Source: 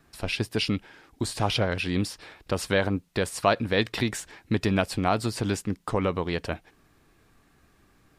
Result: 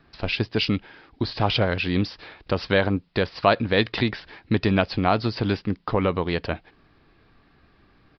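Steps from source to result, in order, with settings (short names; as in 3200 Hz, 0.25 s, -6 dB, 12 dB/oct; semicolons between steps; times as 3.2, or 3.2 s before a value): downsampling 11025 Hz; gain +3.5 dB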